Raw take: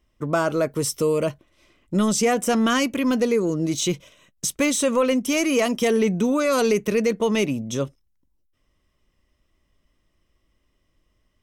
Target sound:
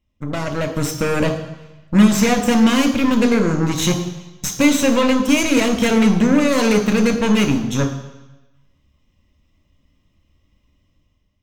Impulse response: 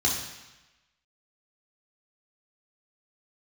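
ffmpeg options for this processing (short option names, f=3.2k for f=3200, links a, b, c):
-filter_complex "[0:a]equalizer=f=160:t=o:w=0.67:g=4,equalizer=f=1.6k:t=o:w=0.67:g=-9,equalizer=f=10k:t=o:w=0.67:g=-11,aeval=exprs='0.316*(cos(1*acos(clip(val(0)/0.316,-1,1)))-cos(1*PI/2))+0.0316*(cos(6*acos(clip(val(0)/0.316,-1,1)))-cos(6*PI/2))+0.0126*(cos(7*acos(clip(val(0)/0.316,-1,1)))-cos(7*PI/2))+0.0562*(cos(8*acos(clip(val(0)/0.316,-1,1)))-cos(8*PI/2))':c=same,dynaudnorm=f=190:g=7:m=10dB,asplit=2[a][b];[1:a]atrim=start_sample=2205[c];[b][c]afir=irnorm=-1:irlink=0,volume=-14dB[d];[a][d]amix=inputs=2:normalize=0,volume=-2dB"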